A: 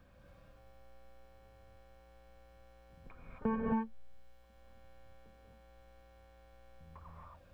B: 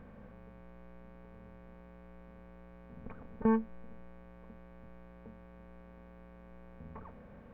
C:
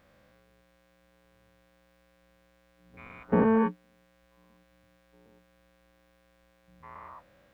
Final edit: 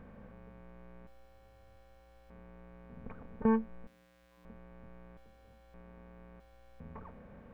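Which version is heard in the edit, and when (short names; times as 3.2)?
B
1.07–2.3 from A
3.87–4.45 from C
5.17–5.74 from A
6.4–6.8 from A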